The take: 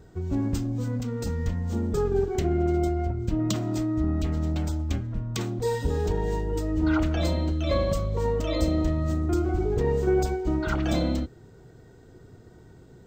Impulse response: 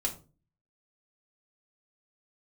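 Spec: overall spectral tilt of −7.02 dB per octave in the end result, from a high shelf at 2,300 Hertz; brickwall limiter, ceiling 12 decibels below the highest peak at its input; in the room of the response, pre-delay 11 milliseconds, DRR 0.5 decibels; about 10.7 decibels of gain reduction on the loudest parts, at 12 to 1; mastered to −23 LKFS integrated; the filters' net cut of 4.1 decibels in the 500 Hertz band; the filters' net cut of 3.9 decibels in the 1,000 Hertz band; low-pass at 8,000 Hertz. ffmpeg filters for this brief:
-filter_complex "[0:a]lowpass=8000,equalizer=frequency=500:width_type=o:gain=-5,equalizer=frequency=1000:width_type=o:gain=-4.5,highshelf=frequency=2300:gain=5.5,acompressor=threshold=-32dB:ratio=12,alimiter=level_in=9dB:limit=-24dB:level=0:latency=1,volume=-9dB,asplit=2[link_01][link_02];[1:a]atrim=start_sample=2205,adelay=11[link_03];[link_02][link_03]afir=irnorm=-1:irlink=0,volume=-4.5dB[link_04];[link_01][link_04]amix=inputs=2:normalize=0,volume=14.5dB"

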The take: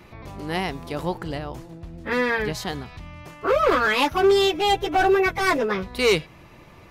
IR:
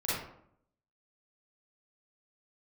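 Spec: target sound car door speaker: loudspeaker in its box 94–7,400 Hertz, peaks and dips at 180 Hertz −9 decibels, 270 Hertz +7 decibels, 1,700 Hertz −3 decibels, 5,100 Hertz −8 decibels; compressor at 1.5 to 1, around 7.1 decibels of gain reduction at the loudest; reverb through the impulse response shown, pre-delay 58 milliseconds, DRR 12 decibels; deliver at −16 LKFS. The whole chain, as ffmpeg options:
-filter_complex "[0:a]acompressor=threshold=-35dB:ratio=1.5,asplit=2[link_01][link_02];[1:a]atrim=start_sample=2205,adelay=58[link_03];[link_02][link_03]afir=irnorm=-1:irlink=0,volume=-19dB[link_04];[link_01][link_04]amix=inputs=2:normalize=0,highpass=94,equalizer=frequency=180:width_type=q:width=4:gain=-9,equalizer=frequency=270:width_type=q:width=4:gain=7,equalizer=frequency=1700:width_type=q:width=4:gain=-3,equalizer=frequency=5100:width_type=q:width=4:gain=-8,lowpass=frequency=7400:width=0.5412,lowpass=frequency=7400:width=1.3066,volume=12.5dB"

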